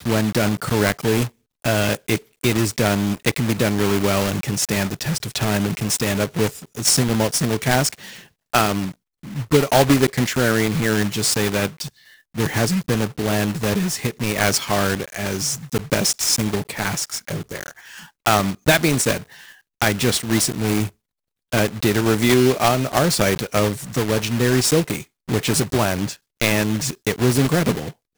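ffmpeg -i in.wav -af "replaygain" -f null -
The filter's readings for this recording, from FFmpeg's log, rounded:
track_gain = +1.5 dB
track_peak = 0.420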